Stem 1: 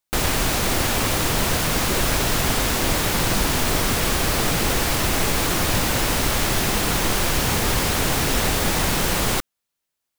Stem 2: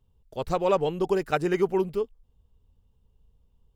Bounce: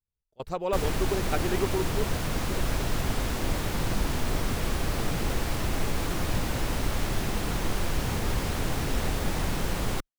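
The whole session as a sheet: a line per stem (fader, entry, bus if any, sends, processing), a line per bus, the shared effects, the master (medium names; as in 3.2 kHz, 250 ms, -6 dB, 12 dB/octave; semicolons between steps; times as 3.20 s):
-10.0 dB, 0.60 s, no send, tilt EQ -1.5 dB/octave
-5.5 dB, 0.00 s, no send, none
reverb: none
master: gate with hold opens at -26 dBFS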